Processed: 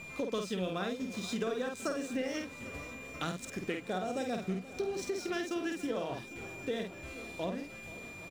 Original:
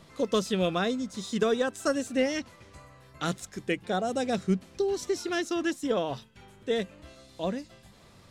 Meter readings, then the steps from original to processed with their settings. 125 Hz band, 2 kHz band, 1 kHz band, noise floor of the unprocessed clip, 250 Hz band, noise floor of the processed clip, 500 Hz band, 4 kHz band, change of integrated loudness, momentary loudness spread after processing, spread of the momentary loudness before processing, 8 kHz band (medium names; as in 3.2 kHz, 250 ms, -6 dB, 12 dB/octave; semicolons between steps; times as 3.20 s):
-6.5 dB, -4.5 dB, -6.5 dB, -56 dBFS, -6.5 dB, -48 dBFS, -7.5 dB, -7.0 dB, -7.5 dB, 8 LU, 9 LU, -6.0 dB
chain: doubling 49 ms -4.5 dB; whistle 2.4 kHz -42 dBFS; hysteresis with a dead band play -41.5 dBFS; compression 3:1, threshold -37 dBFS, peak gain reduction 13 dB; shuffle delay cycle 801 ms, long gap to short 1.5:1, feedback 62%, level -17 dB; trim +1.5 dB